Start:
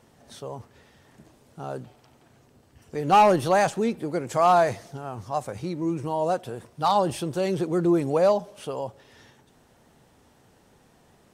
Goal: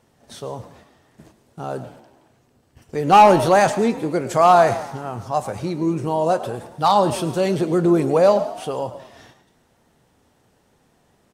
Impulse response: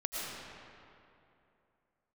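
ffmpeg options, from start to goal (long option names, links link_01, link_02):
-filter_complex "[0:a]agate=range=-8dB:threshold=-53dB:ratio=16:detection=peak,asplit=6[link_01][link_02][link_03][link_04][link_05][link_06];[link_02]adelay=106,afreqshift=47,volume=-16.5dB[link_07];[link_03]adelay=212,afreqshift=94,volume=-21.7dB[link_08];[link_04]adelay=318,afreqshift=141,volume=-26.9dB[link_09];[link_05]adelay=424,afreqshift=188,volume=-32.1dB[link_10];[link_06]adelay=530,afreqshift=235,volume=-37.3dB[link_11];[link_01][link_07][link_08][link_09][link_10][link_11]amix=inputs=6:normalize=0,asplit=2[link_12][link_13];[1:a]atrim=start_sample=2205,atrim=end_sample=6174,adelay=25[link_14];[link_13][link_14]afir=irnorm=-1:irlink=0,volume=-13.5dB[link_15];[link_12][link_15]amix=inputs=2:normalize=0,volume=5.5dB"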